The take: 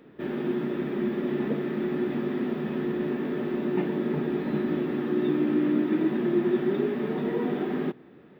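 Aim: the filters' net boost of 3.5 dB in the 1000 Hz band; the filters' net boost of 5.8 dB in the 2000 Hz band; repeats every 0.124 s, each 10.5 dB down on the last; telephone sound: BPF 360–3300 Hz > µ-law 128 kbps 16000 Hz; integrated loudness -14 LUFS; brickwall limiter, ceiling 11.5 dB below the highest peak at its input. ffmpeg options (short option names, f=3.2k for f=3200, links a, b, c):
-af "equalizer=f=1k:t=o:g=3,equalizer=f=2k:t=o:g=6.5,alimiter=level_in=0.5dB:limit=-24dB:level=0:latency=1,volume=-0.5dB,highpass=360,lowpass=3.3k,aecho=1:1:124|248|372:0.299|0.0896|0.0269,volume=22dB" -ar 16000 -c:a pcm_mulaw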